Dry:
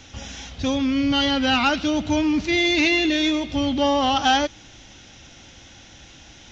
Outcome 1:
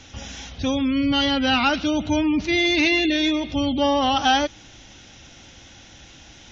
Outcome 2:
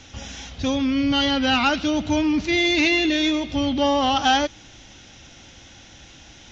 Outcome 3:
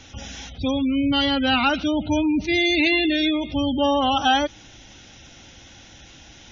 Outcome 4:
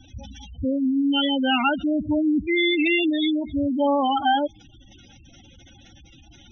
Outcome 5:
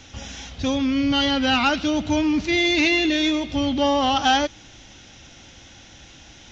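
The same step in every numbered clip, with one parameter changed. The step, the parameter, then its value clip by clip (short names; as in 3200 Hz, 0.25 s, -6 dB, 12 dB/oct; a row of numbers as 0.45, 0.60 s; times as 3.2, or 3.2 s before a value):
spectral gate, under each frame's peak: -35, -50, -25, -10, -60 dB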